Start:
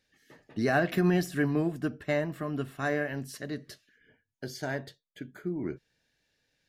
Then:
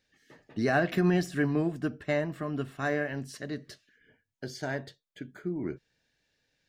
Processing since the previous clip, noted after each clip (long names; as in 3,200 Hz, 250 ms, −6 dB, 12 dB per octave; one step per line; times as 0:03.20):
parametric band 12,000 Hz −12 dB 0.37 octaves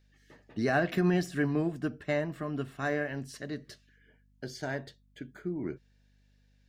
mains hum 50 Hz, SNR 32 dB
level −1.5 dB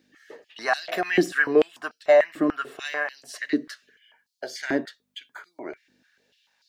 high-pass on a step sequencer 6.8 Hz 300–4,400 Hz
level +7 dB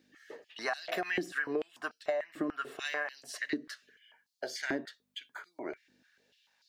downward compressor 16 to 1, threshold −26 dBFS, peak gain reduction 14.5 dB
level −3.5 dB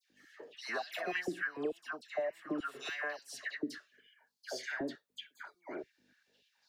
all-pass dispersion lows, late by 105 ms, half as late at 1,500 Hz
level −3 dB